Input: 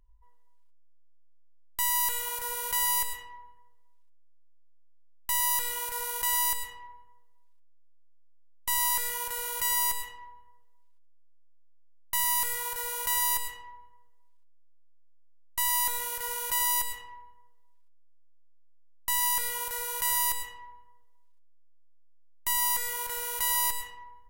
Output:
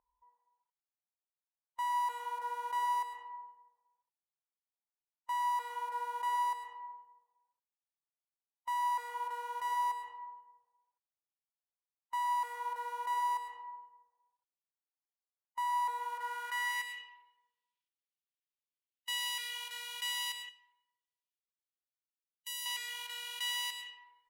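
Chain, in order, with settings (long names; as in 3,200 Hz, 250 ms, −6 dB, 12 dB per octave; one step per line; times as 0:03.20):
0:20.49–0:22.66: first-order pre-emphasis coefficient 0.8
harmonic and percussive parts rebalanced harmonic +6 dB
band-pass filter sweep 860 Hz → 3,000 Hz, 0:16.00–0:17.17
level −2.5 dB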